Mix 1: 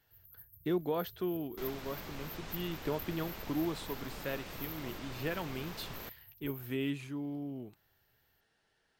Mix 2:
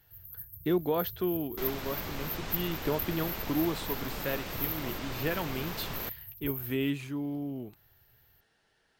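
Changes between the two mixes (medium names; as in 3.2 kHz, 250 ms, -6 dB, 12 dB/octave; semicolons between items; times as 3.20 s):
speech +4.5 dB; first sound +11.0 dB; second sound +7.0 dB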